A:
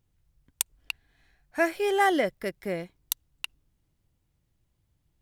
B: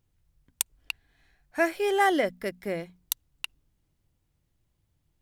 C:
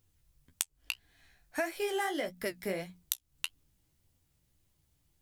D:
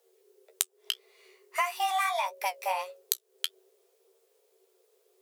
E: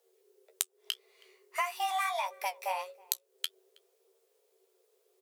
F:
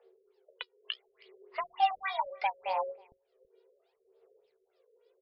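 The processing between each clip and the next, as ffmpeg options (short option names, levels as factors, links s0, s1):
-af "bandreject=f=60:t=h:w=6,bandreject=f=120:t=h:w=6,bandreject=f=180:t=h:w=6,bandreject=f=240:t=h:w=6"
-af "flanger=delay=9.9:depth=7.8:regen=29:speed=1.7:shape=triangular,highshelf=f=3600:g=9,acompressor=threshold=0.0224:ratio=8,volume=1.41"
-af "afreqshift=370,volume=1.68"
-filter_complex "[0:a]asplit=2[s0][s1];[s1]adelay=320.7,volume=0.0501,highshelf=f=4000:g=-7.22[s2];[s0][s2]amix=inputs=2:normalize=0,volume=0.668"
-af "aphaser=in_gain=1:out_gain=1:delay=2.1:decay=0.66:speed=0.7:type=sinusoidal,afftfilt=real='re*lt(b*sr/1024,590*pow(5500/590,0.5+0.5*sin(2*PI*3.4*pts/sr)))':imag='im*lt(b*sr/1024,590*pow(5500/590,0.5+0.5*sin(2*PI*3.4*pts/sr)))':win_size=1024:overlap=0.75"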